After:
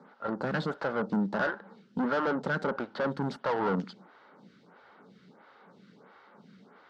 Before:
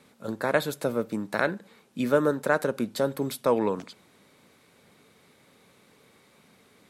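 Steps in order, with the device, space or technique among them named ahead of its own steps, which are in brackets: vibe pedal into a guitar amplifier (photocell phaser 1.5 Hz; tube stage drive 35 dB, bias 0.7; speaker cabinet 97–4500 Hz, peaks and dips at 98 Hz -10 dB, 190 Hz +9 dB, 860 Hz +7 dB, 1400 Hz +9 dB, 2400 Hz -9 dB, 3700 Hz -5 dB); gain +7.5 dB

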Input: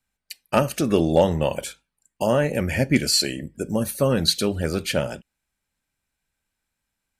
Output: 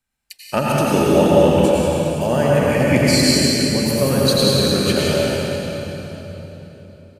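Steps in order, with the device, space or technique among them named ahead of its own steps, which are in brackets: cave (echo 0.185 s -8 dB; reverb RT60 3.9 s, pre-delay 82 ms, DRR -6 dB); gain -1 dB

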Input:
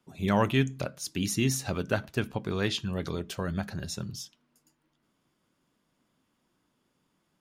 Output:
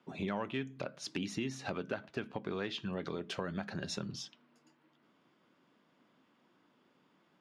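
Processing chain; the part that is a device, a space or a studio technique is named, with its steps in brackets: AM radio (BPF 200–3400 Hz; compressor 5:1, threshold -41 dBFS, peak gain reduction 18.5 dB; soft clip -27.5 dBFS, distortion -26 dB); 3.2–4.07 high shelf 5400 Hz +5 dB; gain +6 dB

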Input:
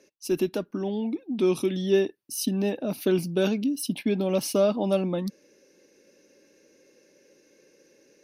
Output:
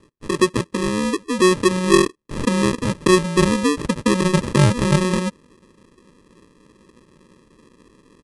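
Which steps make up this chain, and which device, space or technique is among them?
crushed at another speed (playback speed 2×; sample-and-hold 30×; playback speed 0.5×); gain +7.5 dB

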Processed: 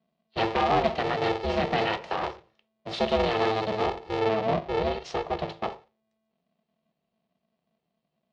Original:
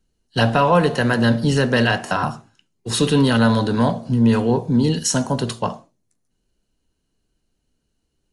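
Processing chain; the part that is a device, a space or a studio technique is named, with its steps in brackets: ring modulator pedal into a guitar cabinet (polarity switched at an audio rate 220 Hz; speaker cabinet 84–4300 Hz, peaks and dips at 98 Hz -9 dB, 160 Hz +6 dB, 280 Hz -7 dB, 680 Hz +7 dB, 1500 Hz -7 dB); 4.19–5.66 LPF 3800 Hz 6 dB/oct; gain -8.5 dB

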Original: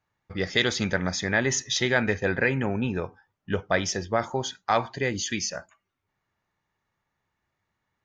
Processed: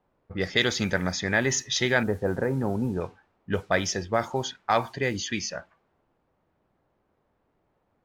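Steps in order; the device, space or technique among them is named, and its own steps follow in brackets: 2.03–3.01 LPF 1200 Hz 24 dB/oct; cassette deck with a dynamic noise filter (white noise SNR 29 dB; low-pass opened by the level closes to 670 Hz, open at -22 dBFS)

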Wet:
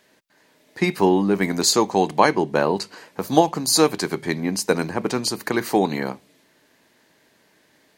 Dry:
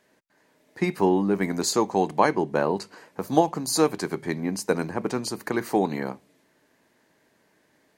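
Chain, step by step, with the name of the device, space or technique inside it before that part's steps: presence and air boost (bell 3700 Hz +6 dB 1.5 oct; high shelf 11000 Hz +6 dB); gain +3.5 dB

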